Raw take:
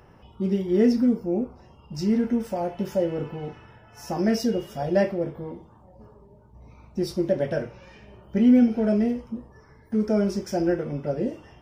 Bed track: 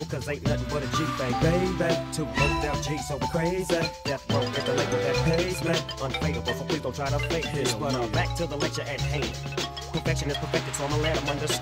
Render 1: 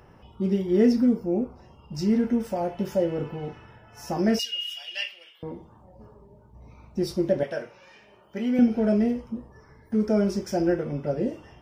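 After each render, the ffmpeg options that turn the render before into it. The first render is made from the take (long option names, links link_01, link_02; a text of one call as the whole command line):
ffmpeg -i in.wav -filter_complex "[0:a]asettb=1/sr,asplit=3[link_01][link_02][link_03];[link_01]atrim=end=4.394[link_04];[link_02]atrim=start=4.39:end=5.43,asetpts=PTS-STARTPTS,afade=type=in:duration=0.004:curve=qsin,afade=type=out:start_time=1.036:duration=0.004:curve=qsin,highpass=frequency=2900:width_type=q:width=11[link_05];[link_03]atrim=start=5.426[link_06];[link_04][link_05]acrossfade=duration=0.004:curve1=hsin:curve2=qsin[link_07];[link_07][link_06]acrossfade=duration=0.004:curve1=qsin:curve2=hsin,asettb=1/sr,asplit=3[link_08][link_09][link_10];[link_08]atrim=end=7.434[link_11];[link_09]atrim=start=7.43:end=8.59,asetpts=PTS-STARTPTS,afade=type=in:duration=0.004:curve=qsin,afade=type=out:start_time=1.156:duration=0.004:curve=qsin,highpass=frequency=700:poles=1[link_12];[link_10]atrim=start=8.586[link_13];[link_11][link_12]acrossfade=duration=0.004:curve1=hsin:curve2=qsin[link_14];[link_14][link_13]acrossfade=duration=0.004:curve1=qsin:curve2=hsin" out.wav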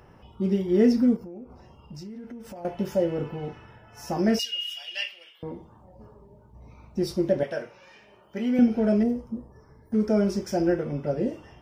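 ffmpeg -i in.wav -filter_complex "[0:a]asettb=1/sr,asplit=3[link_01][link_02][link_03];[link_01]atrim=end=1.164[link_04];[link_02]atrim=start=1.16:end=2.65,asetpts=PTS-STARTPTS,afade=type=in:duration=0.004:curve=qsin,afade=type=out:start_time=1.486:duration=0.004:curve=qsin,acompressor=threshold=-37dB:ratio=10:attack=3.2:release=140:knee=1:detection=peak[link_05];[link_03]atrim=start=2.646[link_06];[link_04][link_05]acrossfade=duration=0.004:curve1=hsin:curve2=qsin[link_07];[link_07][link_06]acrossfade=duration=0.004:curve1=qsin:curve2=hsin,asettb=1/sr,asplit=3[link_08][link_09][link_10];[link_08]atrim=end=9.034[link_11];[link_09]atrim=start=9.03:end=9.94,asetpts=PTS-STARTPTS,afade=type=in:duration=0.004:curve=qsin,afade=type=out:start_time=0.906:duration=0.004:curve=qsin,equalizer=frequency=2600:width_type=o:width=1.6:gain=-12.5[link_12];[link_10]atrim=start=9.936[link_13];[link_11][link_12]acrossfade=duration=0.004:curve1=hsin:curve2=qsin[link_14];[link_14][link_13]acrossfade=duration=0.004:curve1=qsin:curve2=hsin" out.wav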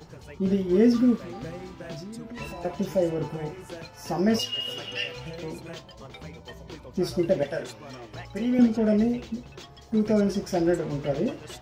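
ffmpeg -i in.wav -i bed.wav -filter_complex "[1:a]volume=-15dB[link_01];[0:a][link_01]amix=inputs=2:normalize=0" out.wav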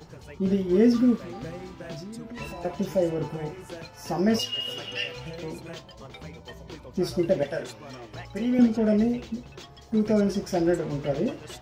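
ffmpeg -i in.wav -af anull out.wav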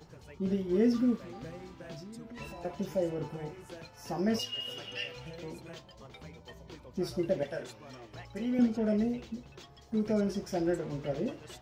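ffmpeg -i in.wav -af "volume=-7dB" out.wav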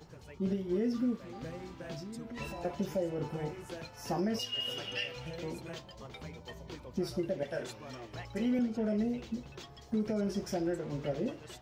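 ffmpeg -i in.wav -af "dynaudnorm=framelen=630:gausssize=5:maxgain=3dB,alimiter=limit=-24dB:level=0:latency=1:release=361" out.wav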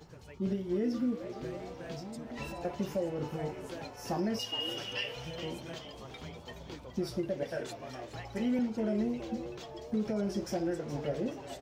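ffmpeg -i in.wav -filter_complex "[0:a]asplit=6[link_01][link_02][link_03][link_04][link_05][link_06];[link_02]adelay=420,afreqshift=120,volume=-12dB[link_07];[link_03]adelay=840,afreqshift=240,volume=-17.8dB[link_08];[link_04]adelay=1260,afreqshift=360,volume=-23.7dB[link_09];[link_05]adelay=1680,afreqshift=480,volume=-29.5dB[link_10];[link_06]adelay=2100,afreqshift=600,volume=-35.4dB[link_11];[link_01][link_07][link_08][link_09][link_10][link_11]amix=inputs=6:normalize=0" out.wav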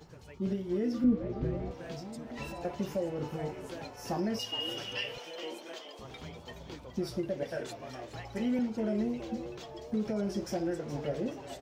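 ffmpeg -i in.wav -filter_complex "[0:a]asettb=1/sr,asplit=3[link_01][link_02][link_03];[link_01]atrim=end=1.044[link_04];[link_02]atrim=start=1.04:end=1.71,asetpts=PTS-STARTPTS,afade=type=in:duration=0.004:curve=qsin,afade=type=out:start_time=0.666:duration=0.004:curve=qsin,aemphasis=mode=reproduction:type=riaa[link_05];[link_03]atrim=start=1.706[link_06];[link_04][link_05]acrossfade=duration=0.004:curve1=hsin:curve2=qsin[link_07];[link_07][link_06]acrossfade=duration=0.004:curve1=qsin:curve2=hsin,asettb=1/sr,asplit=3[link_08][link_09][link_10];[link_08]atrim=end=5.184[link_11];[link_09]atrim=start=5.18:end=5.99,asetpts=PTS-STARTPTS,afade=type=in:duration=0.004:curve=qsin,afade=type=out:start_time=0.806:duration=0.004:curve=qsin,highpass=frequency=310:width=0.5412,highpass=frequency=310:width=1.3066[link_12];[link_10]atrim=start=5.986[link_13];[link_11][link_12]acrossfade=duration=0.004:curve1=hsin:curve2=qsin[link_14];[link_14][link_13]acrossfade=duration=0.004:curve1=qsin:curve2=hsin" out.wav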